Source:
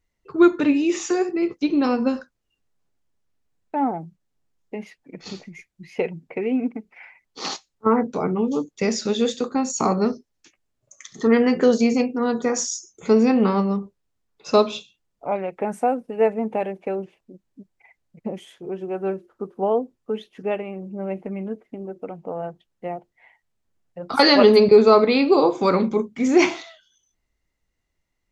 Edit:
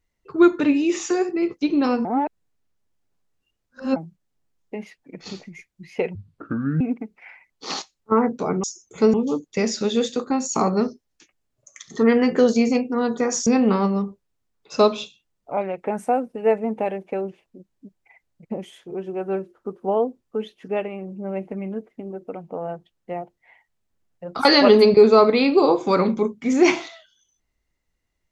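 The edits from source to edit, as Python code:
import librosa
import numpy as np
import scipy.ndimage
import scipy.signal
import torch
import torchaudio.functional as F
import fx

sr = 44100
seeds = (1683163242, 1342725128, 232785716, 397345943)

y = fx.edit(x, sr, fx.reverse_span(start_s=2.05, length_s=1.91),
    fx.speed_span(start_s=6.15, length_s=0.4, speed=0.61),
    fx.move(start_s=12.71, length_s=0.5, to_s=8.38), tone=tone)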